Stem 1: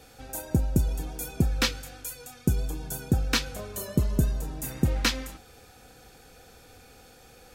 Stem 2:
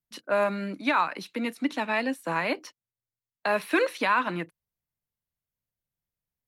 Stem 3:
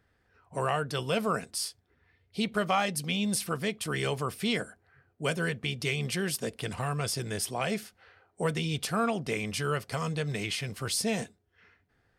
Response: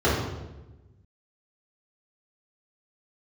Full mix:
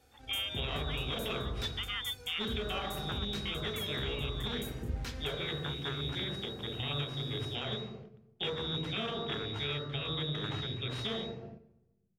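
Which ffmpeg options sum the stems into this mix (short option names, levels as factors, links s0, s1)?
-filter_complex "[0:a]alimiter=limit=0.106:level=0:latency=1:release=228,asoftclip=type=tanh:threshold=0.0794,volume=0.398,asplit=2[s0][s1];[s1]volume=0.0708[s2];[1:a]volume=0.473[s3];[2:a]acrusher=bits=5:dc=4:mix=0:aa=0.000001,adynamicsmooth=sensitivity=7.5:basefreq=6600,volume=0.708,asplit=3[s4][s5][s6];[s5]volume=0.0841[s7];[s6]apad=whole_len=285646[s8];[s3][s8]sidechaincompress=threshold=0.0141:ratio=8:attack=16:release=403[s9];[s9][s4]amix=inputs=2:normalize=0,lowpass=f=3200:t=q:w=0.5098,lowpass=f=3200:t=q:w=0.6013,lowpass=f=3200:t=q:w=0.9,lowpass=f=3200:t=q:w=2.563,afreqshift=-3800,alimiter=limit=0.0708:level=0:latency=1:release=197,volume=1[s10];[3:a]atrim=start_sample=2205[s11];[s2][s7]amix=inputs=2:normalize=0[s12];[s12][s11]afir=irnorm=-1:irlink=0[s13];[s0][s10][s13]amix=inputs=3:normalize=0,agate=range=0.447:threshold=0.00447:ratio=16:detection=peak,alimiter=level_in=1.19:limit=0.0631:level=0:latency=1:release=324,volume=0.841"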